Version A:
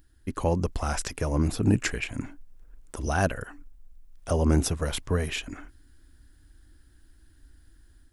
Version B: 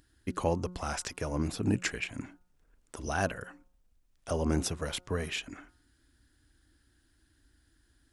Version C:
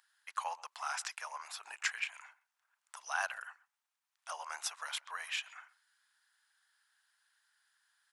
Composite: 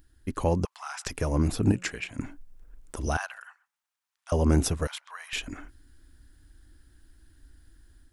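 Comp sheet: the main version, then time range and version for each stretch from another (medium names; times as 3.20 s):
A
0.65–1.06 s: from C
1.72–2.19 s: from B
3.17–4.32 s: from C
4.87–5.33 s: from C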